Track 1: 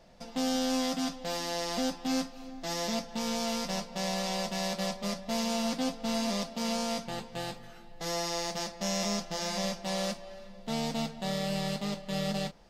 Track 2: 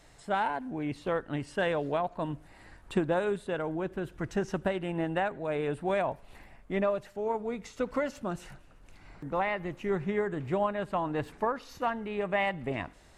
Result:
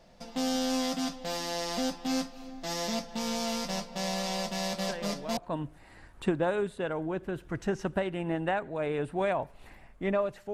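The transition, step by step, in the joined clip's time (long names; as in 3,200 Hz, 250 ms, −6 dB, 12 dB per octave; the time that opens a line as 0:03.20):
track 1
0:04.73: mix in track 2 from 0:01.42 0.64 s −11 dB
0:05.37: continue with track 2 from 0:02.06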